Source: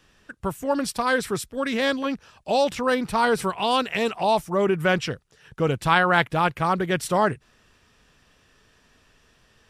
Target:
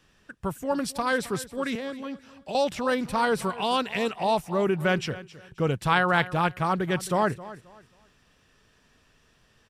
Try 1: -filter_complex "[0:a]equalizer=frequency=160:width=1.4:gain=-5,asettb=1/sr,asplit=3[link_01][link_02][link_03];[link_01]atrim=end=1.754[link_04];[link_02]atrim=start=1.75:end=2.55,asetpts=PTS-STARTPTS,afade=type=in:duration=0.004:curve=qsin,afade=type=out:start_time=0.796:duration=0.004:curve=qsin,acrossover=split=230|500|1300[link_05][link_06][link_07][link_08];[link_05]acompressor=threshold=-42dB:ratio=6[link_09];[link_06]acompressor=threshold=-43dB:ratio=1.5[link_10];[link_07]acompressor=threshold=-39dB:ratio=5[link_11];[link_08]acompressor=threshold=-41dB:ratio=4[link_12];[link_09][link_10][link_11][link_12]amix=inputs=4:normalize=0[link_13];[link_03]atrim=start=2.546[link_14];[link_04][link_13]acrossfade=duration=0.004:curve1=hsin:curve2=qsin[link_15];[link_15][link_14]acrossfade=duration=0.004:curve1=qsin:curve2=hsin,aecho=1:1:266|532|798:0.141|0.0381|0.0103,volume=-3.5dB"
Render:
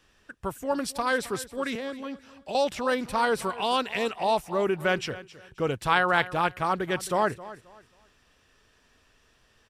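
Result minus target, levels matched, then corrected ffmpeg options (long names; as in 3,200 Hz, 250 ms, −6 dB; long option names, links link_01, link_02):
125 Hz band −6.0 dB
-filter_complex "[0:a]equalizer=frequency=160:width=1.4:gain=2.5,asettb=1/sr,asplit=3[link_01][link_02][link_03];[link_01]atrim=end=1.754[link_04];[link_02]atrim=start=1.75:end=2.55,asetpts=PTS-STARTPTS,afade=type=in:duration=0.004:curve=qsin,afade=type=out:start_time=0.796:duration=0.004:curve=qsin,acrossover=split=230|500|1300[link_05][link_06][link_07][link_08];[link_05]acompressor=threshold=-42dB:ratio=6[link_09];[link_06]acompressor=threshold=-43dB:ratio=1.5[link_10];[link_07]acompressor=threshold=-39dB:ratio=5[link_11];[link_08]acompressor=threshold=-41dB:ratio=4[link_12];[link_09][link_10][link_11][link_12]amix=inputs=4:normalize=0[link_13];[link_03]atrim=start=2.546[link_14];[link_04][link_13]acrossfade=duration=0.004:curve1=hsin:curve2=qsin[link_15];[link_15][link_14]acrossfade=duration=0.004:curve1=qsin:curve2=hsin,aecho=1:1:266|532|798:0.141|0.0381|0.0103,volume=-3.5dB"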